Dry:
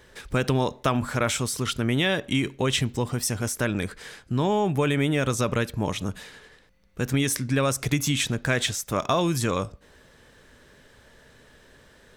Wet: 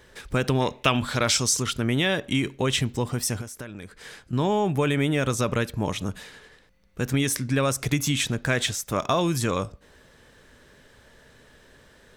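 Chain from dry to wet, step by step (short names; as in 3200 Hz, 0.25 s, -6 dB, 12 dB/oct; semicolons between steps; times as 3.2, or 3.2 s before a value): 0.6–1.61 bell 1900 Hz -> 7100 Hz +14.5 dB 0.64 oct; 3.41–4.33 compressor 6:1, threshold -35 dBFS, peak gain reduction 14.5 dB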